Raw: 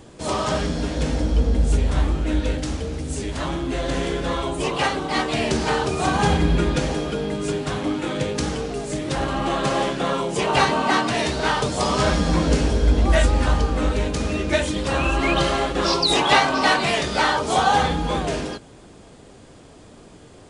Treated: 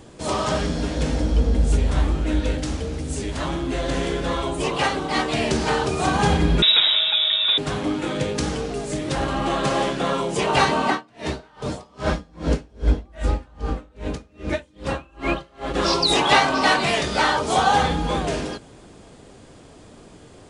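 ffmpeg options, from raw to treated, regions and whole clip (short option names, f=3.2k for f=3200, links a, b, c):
-filter_complex "[0:a]asettb=1/sr,asplit=3[a][b][c];[a]atrim=end=6.624[d];[b]atrim=start=6.62:end=7.58,asetpts=PTS-STARTPTS,afade=t=in:d=0.004:c=qsin,afade=t=out:st=0.956:d=0.004:c=qsin,acontrast=29,lowpass=f=3.3k:t=q:w=0.5098,lowpass=f=3.3k:t=q:w=0.6013,lowpass=f=3.3k:t=q:w=0.9,lowpass=f=3.3k:t=q:w=2.563,afreqshift=-3900[e];[c]atrim=start=7.576[f];[d][e]acrossfade=d=0.004:c1=hsin:c2=qsin[g];[g][f]acrossfade=d=0.004:c1=qsin:c2=hsin,asettb=1/sr,asplit=3[h][i][j];[h]atrim=end=10.904[k];[i]atrim=start=10.9:end=15.74,asetpts=PTS-STARTPTS,afade=t=in:d=0.004:c=qsin,afade=t=out:st=4.836:d=0.004:c=qsin,highshelf=f=3.3k:g=-7.5,aeval=exprs='val(0)*pow(10,-33*(0.5-0.5*cos(2*PI*2.5*n/s))/20)':c=same[l];[j]atrim=start=15.736[m];[k][l]acrossfade=d=0.004:c1=hsin:c2=qsin[n];[n][m]acrossfade=d=0.004:c1=qsin:c2=hsin"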